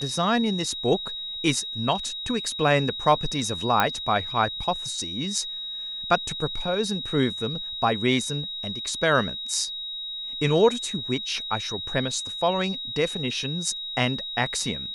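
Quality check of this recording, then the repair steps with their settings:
whine 3.8 kHz -31 dBFS
3.80 s: pop -6 dBFS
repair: de-click; band-stop 3.8 kHz, Q 30

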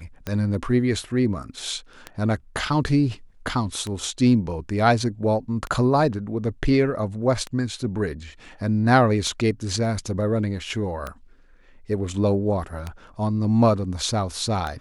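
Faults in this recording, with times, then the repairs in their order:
tick 33 1/3 rpm -15 dBFS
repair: de-click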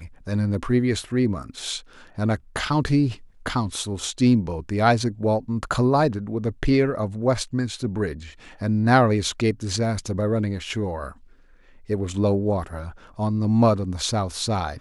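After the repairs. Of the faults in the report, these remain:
nothing left

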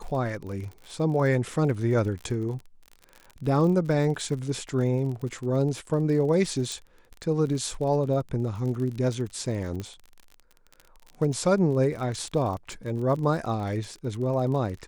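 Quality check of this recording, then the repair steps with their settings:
crackle 46 per s -34 dBFS
6.72 s: pop
9.80 s: pop -21 dBFS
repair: de-click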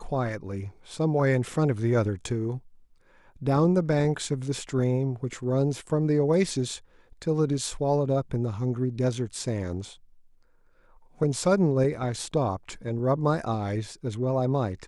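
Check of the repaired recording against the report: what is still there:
nothing left

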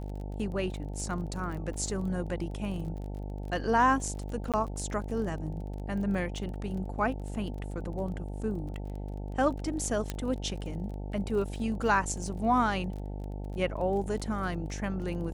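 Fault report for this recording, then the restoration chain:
buzz 50 Hz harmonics 18 -37 dBFS
crackle 27 per s -39 dBFS
1.74 s: dropout 2.7 ms
4.52–4.54 s: dropout 17 ms
10.10 s: pop -17 dBFS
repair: de-click; de-hum 50 Hz, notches 18; interpolate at 1.74 s, 2.7 ms; interpolate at 4.52 s, 17 ms

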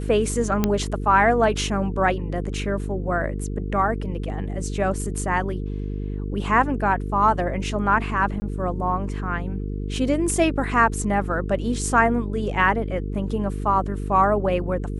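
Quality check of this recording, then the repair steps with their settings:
buzz 50 Hz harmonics 9 -28 dBFS
0.64 s: pop -6 dBFS
8.40–8.42 s: dropout 20 ms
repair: de-click; de-hum 50 Hz, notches 9; interpolate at 8.40 s, 20 ms

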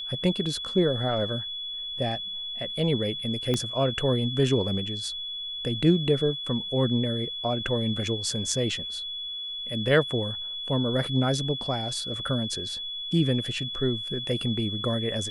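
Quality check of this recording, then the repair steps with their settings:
whine 3.4 kHz -32 dBFS
3.54 s: pop -13 dBFS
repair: de-click; band-stop 3.4 kHz, Q 30

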